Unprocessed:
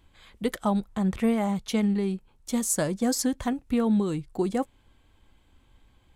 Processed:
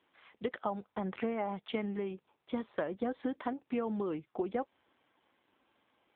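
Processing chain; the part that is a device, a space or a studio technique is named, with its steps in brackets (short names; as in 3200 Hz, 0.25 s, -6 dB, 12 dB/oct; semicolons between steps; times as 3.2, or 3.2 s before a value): voicemail (BPF 370–3000 Hz; compressor 8:1, threshold -29 dBFS, peak gain reduction 7.5 dB; AMR-NB 7.4 kbps 8000 Hz)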